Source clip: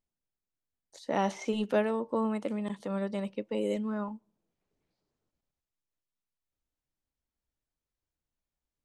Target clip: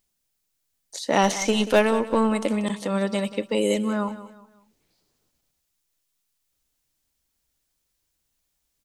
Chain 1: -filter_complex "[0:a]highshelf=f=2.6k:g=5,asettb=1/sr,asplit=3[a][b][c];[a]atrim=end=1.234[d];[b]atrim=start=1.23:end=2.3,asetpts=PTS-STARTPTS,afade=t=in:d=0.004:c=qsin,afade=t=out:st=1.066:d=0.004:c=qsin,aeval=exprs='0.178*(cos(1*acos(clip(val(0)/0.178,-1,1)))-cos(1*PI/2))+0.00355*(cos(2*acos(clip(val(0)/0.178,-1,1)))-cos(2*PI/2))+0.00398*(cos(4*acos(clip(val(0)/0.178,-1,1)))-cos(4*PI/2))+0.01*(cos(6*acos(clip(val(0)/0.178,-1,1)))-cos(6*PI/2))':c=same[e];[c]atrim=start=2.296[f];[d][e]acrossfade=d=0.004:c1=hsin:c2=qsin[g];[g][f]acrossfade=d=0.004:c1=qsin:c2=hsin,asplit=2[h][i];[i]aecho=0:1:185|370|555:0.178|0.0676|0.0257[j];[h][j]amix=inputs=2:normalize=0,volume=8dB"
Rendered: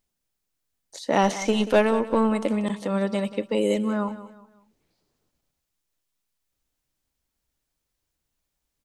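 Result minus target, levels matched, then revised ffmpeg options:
4000 Hz band -3.5 dB
-filter_complex "[0:a]highshelf=f=2.6k:g=12,asettb=1/sr,asplit=3[a][b][c];[a]atrim=end=1.234[d];[b]atrim=start=1.23:end=2.3,asetpts=PTS-STARTPTS,afade=t=in:d=0.004:c=qsin,afade=t=out:st=1.066:d=0.004:c=qsin,aeval=exprs='0.178*(cos(1*acos(clip(val(0)/0.178,-1,1)))-cos(1*PI/2))+0.00355*(cos(2*acos(clip(val(0)/0.178,-1,1)))-cos(2*PI/2))+0.00398*(cos(4*acos(clip(val(0)/0.178,-1,1)))-cos(4*PI/2))+0.01*(cos(6*acos(clip(val(0)/0.178,-1,1)))-cos(6*PI/2))':c=same[e];[c]atrim=start=2.296[f];[d][e]acrossfade=d=0.004:c1=hsin:c2=qsin[g];[g][f]acrossfade=d=0.004:c1=qsin:c2=hsin,asplit=2[h][i];[i]aecho=0:1:185|370|555:0.178|0.0676|0.0257[j];[h][j]amix=inputs=2:normalize=0,volume=8dB"

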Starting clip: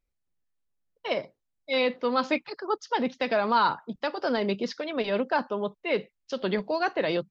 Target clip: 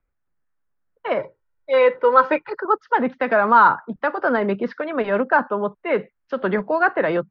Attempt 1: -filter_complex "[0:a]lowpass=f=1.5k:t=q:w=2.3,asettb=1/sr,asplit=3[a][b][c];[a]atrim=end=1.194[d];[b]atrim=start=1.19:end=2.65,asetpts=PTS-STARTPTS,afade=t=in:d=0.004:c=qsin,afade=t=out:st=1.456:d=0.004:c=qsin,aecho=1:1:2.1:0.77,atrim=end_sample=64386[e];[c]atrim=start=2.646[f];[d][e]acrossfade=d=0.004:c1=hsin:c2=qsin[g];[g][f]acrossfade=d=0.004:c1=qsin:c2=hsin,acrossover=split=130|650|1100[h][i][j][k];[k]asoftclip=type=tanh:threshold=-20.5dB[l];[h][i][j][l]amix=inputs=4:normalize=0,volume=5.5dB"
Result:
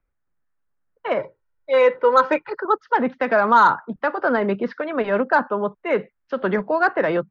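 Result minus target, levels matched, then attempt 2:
soft clip: distortion +15 dB
-filter_complex "[0:a]lowpass=f=1.5k:t=q:w=2.3,asettb=1/sr,asplit=3[a][b][c];[a]atrim=end=1.194[d];[b]atrim=start=1.19:end=2.65,asetpts=PTS-STARTPTS,afade=t=in:d=0.004:c=qsin,afade=t=out:st=1.456:d=0.004:c=qsin,aecho=1:1:2.1:0.77,atrim=end_sample=64386[e];[c]atrim=start=2.646[f];[d][e]acrossfade=d=0.004:c1=hsin:c2=qsin[g];[g][f]acrossfade=d=0.004:c1=qsin:c2=hsin,acrossover=split=130|650|1100[h][i][j][k];[k]asoftclip=type=tanh:threshold=-10.5dB[l];[h][i][j][l]amix=inputs=4:normalize=0,volume=5.5dB"

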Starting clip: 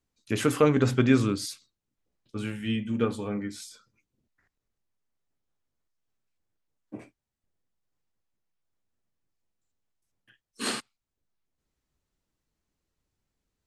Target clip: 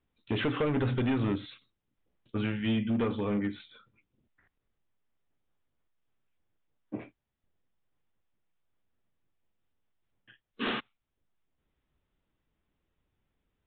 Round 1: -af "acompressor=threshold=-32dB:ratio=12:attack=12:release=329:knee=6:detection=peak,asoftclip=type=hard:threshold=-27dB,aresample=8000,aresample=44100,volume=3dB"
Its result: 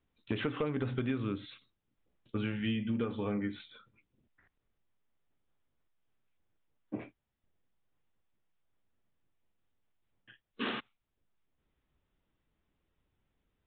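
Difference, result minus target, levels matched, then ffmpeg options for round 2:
compressor: peak gain reduction +8 dB
-af "acompressor=threshold=-23dB:ratio=12:attack=12:release=329:knee=6:detection=peak,asoftclip=type=hard:threshold=-27dB,aresample=8000,aresample=44100,volume=3dB"

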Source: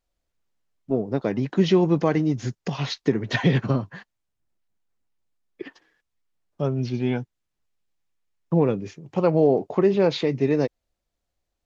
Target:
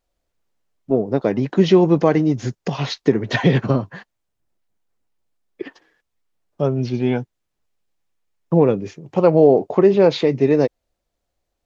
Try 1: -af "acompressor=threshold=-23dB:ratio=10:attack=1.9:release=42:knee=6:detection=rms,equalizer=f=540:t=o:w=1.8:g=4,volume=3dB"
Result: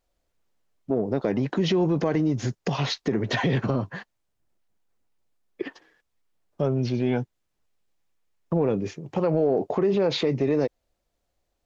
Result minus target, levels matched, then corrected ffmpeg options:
compressor: peak gain reduction +12 dB
-af "equalizer=f=540:t=o:w=1.8:g=4,volume=3dB"

